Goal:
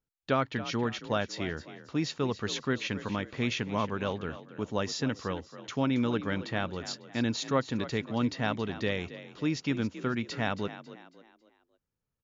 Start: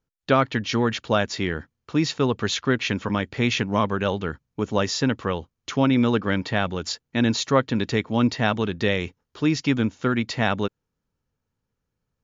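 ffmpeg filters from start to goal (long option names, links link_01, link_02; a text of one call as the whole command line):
ffmpeg -i in.wav -filter_complex "[0:a]asplit=5[link_01][link_02][link_03][link_04][link_05];[link_02]adelay=274,afreqshift=39,volume=-14dB[link_06];[link_03]adelay=548,afreqshift=78,volume=-22.4dB[link_07];[link_04]adelay=822,afreqshift=117,volume=-30.8dB[link_08];[link_05]adelay=1096,afreqshift=156,volume=-39.2dB[link_09];[link_01][link_06][link_07][link_08][link_09]amix=inputs=5:normalize=0,volume=-8.5dB" out.wav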